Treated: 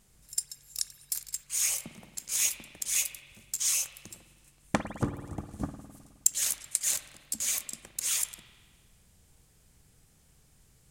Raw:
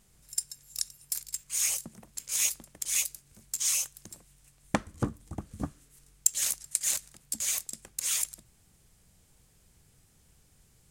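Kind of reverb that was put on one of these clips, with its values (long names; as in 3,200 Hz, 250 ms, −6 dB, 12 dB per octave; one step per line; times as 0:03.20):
spring reverb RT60 1.6 s, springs 52 ms, chirp 50 ms, DRR 8 dB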